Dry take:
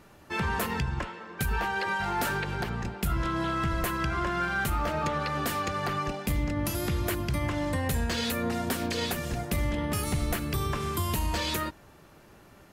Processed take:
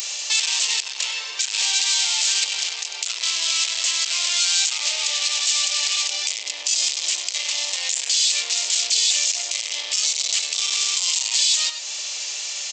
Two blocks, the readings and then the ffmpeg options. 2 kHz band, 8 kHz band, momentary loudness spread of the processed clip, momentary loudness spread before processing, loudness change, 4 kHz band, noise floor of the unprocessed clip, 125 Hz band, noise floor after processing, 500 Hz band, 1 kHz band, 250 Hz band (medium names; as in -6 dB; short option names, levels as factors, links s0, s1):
+4.5 dB, +21.5 dB, 7 LU, 3 LU, +10.0 dB, +19.0 dB, -54 dBFS, under -40 dB, -32 dBFS, -12.0 dB, -8.5 dB, under -25 dB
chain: -af "aecho=1:1:96:0.15,aresample=16000,asoftclip=type=tanh:threshold=0.015,aresample=44100,acompressor=threshold=0.00316:ratio=4,aexciter=amount=11.9:drive=5.5:freq=2300,highpass=f=500:w=0.5412,highpass=f=500:w=1.3066,aemphasis=mode=production:type=bsi,alimiter=level_in=8.91:limit=0.891:release=50:level=0:latency=1,volume=0.398"